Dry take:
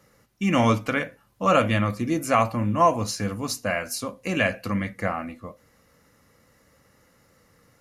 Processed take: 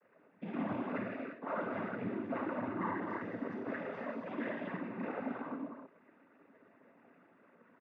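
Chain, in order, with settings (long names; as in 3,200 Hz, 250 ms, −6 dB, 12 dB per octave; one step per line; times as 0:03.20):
lower of the sound and its delayed copy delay 3.7 ms
low-pass filter 1,900 Hz 24 dB per octave
comb filter 3.6 ms, depth 51%
downward compressor 2.5 to 1, threshold −37 dBFS, peak gain reduction 15.5 dB
reverb whose tail is shaped and stops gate 370 ms flat, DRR −4 dB
cochlear-implant simulation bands 16
level −7.5 dB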